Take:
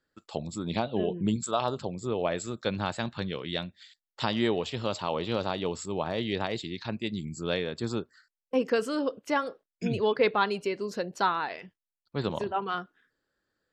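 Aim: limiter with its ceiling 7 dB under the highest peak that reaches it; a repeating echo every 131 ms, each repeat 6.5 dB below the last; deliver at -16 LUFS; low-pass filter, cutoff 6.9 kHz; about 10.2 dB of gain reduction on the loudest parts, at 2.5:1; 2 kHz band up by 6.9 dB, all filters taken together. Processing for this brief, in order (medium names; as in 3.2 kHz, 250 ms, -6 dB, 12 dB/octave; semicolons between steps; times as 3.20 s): low-pass 6.9 kHz; peaking EQ 2 kHz +9 dB; compression 2.5:1, threshold -33 dBFS; peak limiter -23.5 dBFS; feedback delay 131 ms, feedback 47%, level -6.5 dB; trim +20 dB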